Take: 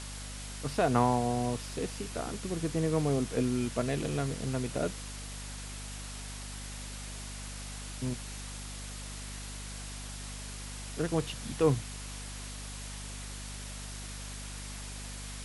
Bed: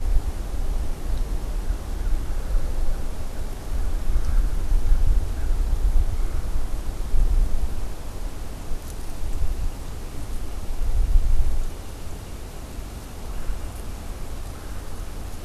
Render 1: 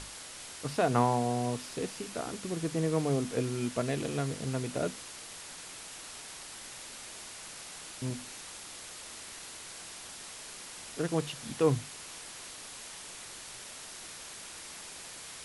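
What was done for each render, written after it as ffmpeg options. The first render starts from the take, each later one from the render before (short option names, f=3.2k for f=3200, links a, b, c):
-af "bandreject=f=50:t=h:w=6,bandreject=f=100:t=h:w=6,bandreject=f=150:t=h:w=6,bandreject=f=200:t=h:w=6,bandreject=f=250:t=h:w=6"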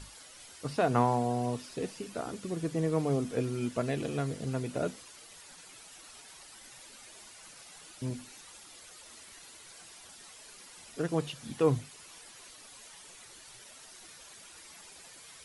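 -af "afftdn=nr=10:nf=-46"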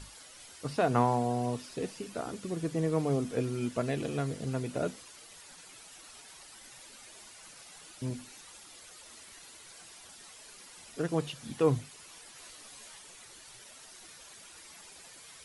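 -filter_complex "[0:a]asettb=1/sr,asplit=3[a][b][c];[a]atrim=end=12.344[d];[b]atrim=start=12.34:end=12.99,asetpts=PTS-STARTPTS,afade=t=in:d=0.004:c=qsin,afade=t=out:st=0.646:d=0.004:c=qsin,asplit=2[e][f];[f]adelay=14,volume=-4dB[g];[e][g]amix=inputs=2:normalize=0,atrim=end_sample=28665[h];[c]atrim=start=12.986[i];[d][h]acrossfade=d=0.004:c1=hsin:c2=qsin[j];[j][i]acrossfade=d=0.004:c1=qsin:c2=hsin"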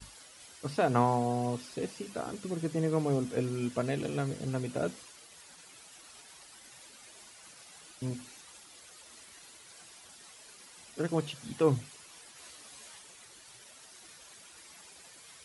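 -af "highpass=47,agate=range=-33dB:threshold=-49dB:ratio=3:detection=peak"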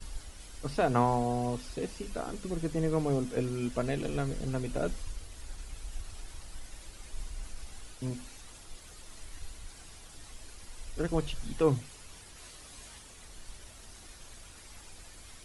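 -filter_complex "[1:a]volume=-21dB[a];[0:a][a]amix=inputs=2:normalize=0"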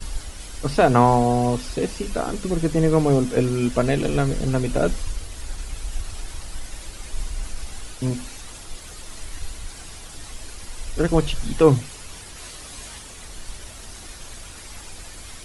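-af "volume=11.5dB,alimiter=limit=-2dB:level=0:latency=1"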